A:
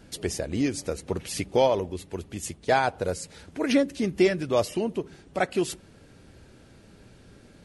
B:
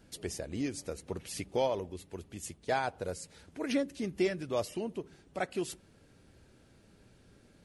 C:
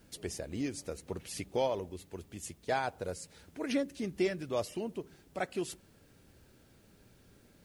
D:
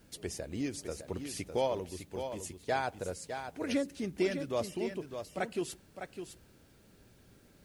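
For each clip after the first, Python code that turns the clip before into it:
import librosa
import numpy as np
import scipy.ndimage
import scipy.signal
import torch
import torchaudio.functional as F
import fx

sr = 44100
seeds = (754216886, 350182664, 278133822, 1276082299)

y1 = fx.high_shelf(x, sr, hz=9700.0, db=4.0)
y1 = y1 * librosa.db_to_amplitude(-9.0)
y2 = fx.dmg_noise_colour(y1, sr, seeds[0], colour='white', level_db=-72.0)
y2 = y2 * librosa.db_to_amplitude(-1.0)
y3 = y2 + 10.0 ** (-8.0 / 20.0) * np.pad(y2, (int(607 * sr / 1000.0), 0))[:len(y2)]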